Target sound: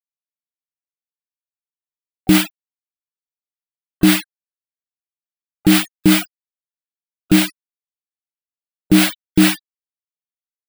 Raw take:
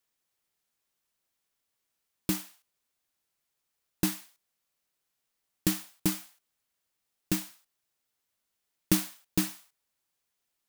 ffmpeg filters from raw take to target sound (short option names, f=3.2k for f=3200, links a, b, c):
-filter_complex "[0:a]afftfilt=real='re*gte(hypot(re,im),0.00355)':imag='im*gte(hypot(re,im),0.00355)':win_size=1024:overlap=0.75,bass=f=250:g=-6,treble=f=4k:g=-6,acrossover=split=710[a][b];[a]acompressor=mode=upward:threshold=-37dB:ratio=2.5[c];[b]asoftclip=type=tanh:threshold=-36dB[d];[c][d]amix=inputs=2:normalize=0,bandreject=f=1.8k:w=19,areverse,acompressor=threshold=-36dB:ratio=4,areverse,equalizer=f=1k:t=o:w=0.67:g=-10,equalizer=f=6.3k:t=o:w=0.67:g=-9,equalizer=f=16k:t=o:w=0.67:g=-10,alimiter=level_in=35.5dB:limit=-1dB:release=50:level=0:latency=1,volume=-1dB"